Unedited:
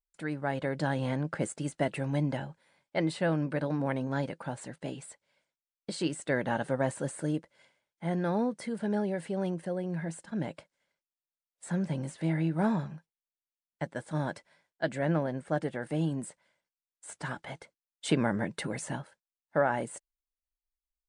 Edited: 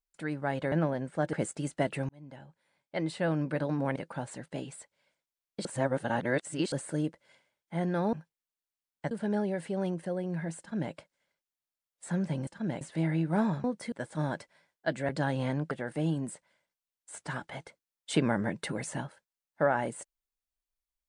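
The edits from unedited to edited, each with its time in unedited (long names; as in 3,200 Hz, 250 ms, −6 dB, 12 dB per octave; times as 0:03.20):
0:00.72–0:01.34: swap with 0:15.05–0:15.66
0:02.10–0:03.45: fade in
0:03.97–0:04.26: remove
0:05.95–0:07.02: reverse
0:08.43–0:08.71: swap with 0:12.90–0:13.88
0:10.19–0:10.53: duplicate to 0:12.07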